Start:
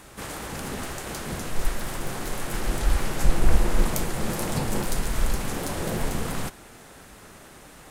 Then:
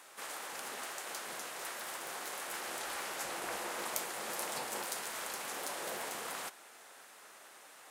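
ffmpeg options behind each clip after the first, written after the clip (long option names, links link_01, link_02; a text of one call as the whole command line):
ffmpeg -i in.wav -af "highpass=630,volume=-6dB" out.wav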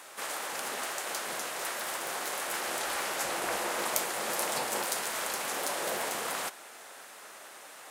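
ffmpeg -i in.wav -af "equalizer=frequency=600:width=3.7:gain=2,volume=7dB" out.wav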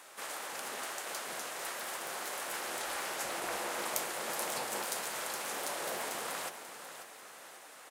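ffmpeg -i in.wav -af "aecho=1:1:539|1078|1617|2156|2695:0.282|0.124|0.0546|0.024|0.0106,volume=-5dB" out.wav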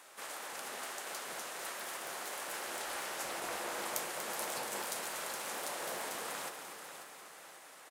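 ffmpeg -i in.wav -af "aecho=1:1:239|478|717|956|1195|1434|1673:0.316|0.19|0.114|0.0683|0.041|0.0246|0.0148,volume=-3dB" out.wav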